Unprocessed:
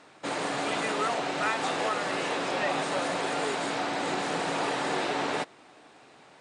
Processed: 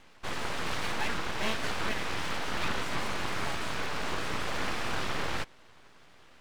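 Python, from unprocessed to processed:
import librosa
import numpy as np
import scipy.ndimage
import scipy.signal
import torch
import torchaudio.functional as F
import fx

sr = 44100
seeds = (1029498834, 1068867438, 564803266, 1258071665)

y = fx.high_shelf(x, sr, hz=6100.0, db=-10.0)
y = np.abs(y)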